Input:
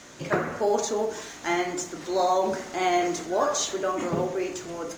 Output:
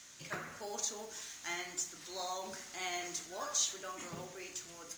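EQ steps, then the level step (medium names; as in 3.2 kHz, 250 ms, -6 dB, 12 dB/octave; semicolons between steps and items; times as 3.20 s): amplifier tone stack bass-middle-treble 5-5-5; treble shelf 4.4 kHz +5.5 dB; -1.5 dB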